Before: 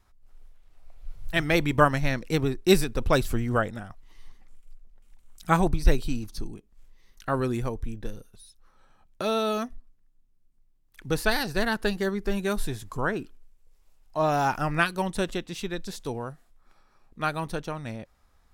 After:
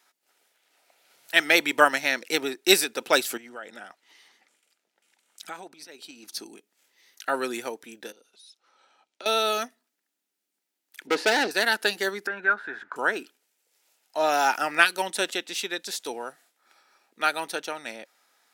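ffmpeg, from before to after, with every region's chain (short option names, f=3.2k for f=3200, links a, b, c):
-filter_complex "[0:a]asettb=1/sr,asplit=3[a][b][c];[a]atrim=end=3.374[d];[b]atrim=start=3.37:end=6.29,asetpts=PTS-STARTPTS,afade=t=in:d=0.004:c=qsin,afade=t=out:st=2.916:d=0.004:c=qsin,highshelf=f=10k:g=-11,acompressor=threshold=-34dB:ratio=12:attack=3.2:release=140:knee=1:detection=peak[e];[c]atrim=start=6.286[f];[d][e]acrossfade=d=0.004:c1=hsin:c2=qsin[g];[g][f]acrossfade=d=0.004:c1=qsin:c2=hsin,asettb=1/sr,asplit=3[h][i][j];[h]atrim=end=8.124[k];[i]atrim=start=8.12:end=9.26,asetpts=PTS-STARTPTS,afade=t=in:d=0.004:c=qsin,afade=t=out:st=1.136:d=0.004:c=qsin,equalizer=f=1.7k:t=o:w=0.32:g=-8,acompressor=threshold=-51dB:ratio=2:attack=3.2:release=140:knee=1:detection=peak,highpass=220,lowpass=5.9k[l];[j]atrim=start=9.256[m];[k][l]acrossfade=d=0.004:c1=hsin:c2=qsin[n];[n][m]acrossfade=d=0.004:c1=qsin:c2=hsin,asettb=1/sr,asplit=3[o][p][q];[o]atrim=end=11.074[r];[p]atrim=start=11.07:end=11.51,asetpts=PTS-STARTPTS,afade=t=in:d=0.004:c=qsin,afade=t=out:st=0.436:d=0.004:c=qsin,highpass=140,lowpass=3.8k,equalizer=f=370:w=0.57:g=11.5,asoftclip=type=hard:threshold=-19dB[s];[q]atrim=start=11.506[t];[r][s]acrossfade=d=0.004:c1=hsin:c2=qsin[u];[u][t]acrossfade=d=0.004:c1=qsin:c2=hsin,asettb=1/sr,asplit=3[v][w][x];[v]atrim=end=12.274[y];[w]atrim=start=12.27:end=12.96,asetpts=PTS-STARTPTS,afade=t=in:d=0.004:c=qsin,afade=t=out:st=0.686:d=0.004:c=qsin,acompressor=threshold=-33dB:ratio=2:attack=3.2:release=140:knee=1:detection=peak,lowpass=f=1.5k:t=q:w=9.5[z];[x]atrim=start=12.956[aa];[y][z]acrossfade=d=0.004:c1=hsin:c2=qsin[ab];[ab][aa]acrossfade=d=0.004:c1=qsin:c2=hsin,highpass=f=270:w=0.5412,highpass=f=270:w=1.3066,tiltshelf=f=780:g=-6.5,bandreject=f=1.1k:w=5.1,volume=2.5dB"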